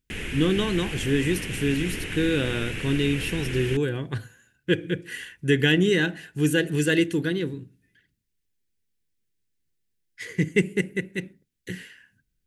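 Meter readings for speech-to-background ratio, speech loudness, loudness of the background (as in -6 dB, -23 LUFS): 7.0 dB, -25.5 LUFS, -32.5 LUFS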